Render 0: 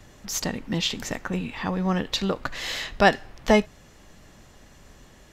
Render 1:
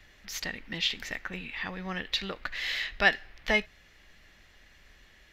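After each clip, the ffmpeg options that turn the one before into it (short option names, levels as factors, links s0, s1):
-af "equalizer=f=125:t=o:w=1:g=-9,equalizer=f=250:t=o:w=1:g=-6,equalizer=f=500:t=o:w=1:g=-4,equalizer=f=1000:t=o:w=1:g=-6,equalizer=f=2000:t=o:w=1:g=9,equalizer=f=4000:t=o:w=1:g=4,equalizer=f=8000:t=o:w=1:g=-9,volume=0.501"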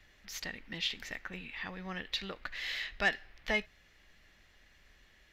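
-af "asoftclip=type=tanh:threshold=0.266,volume=0.531"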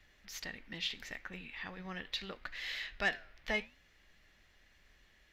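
-af "flanger=delay=3.5:depth=7.2:regen=-88:speed=0.76:shape=triangular,volume=1.19"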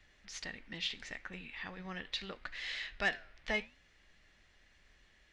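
-af "aresample=22050,aresample=44100"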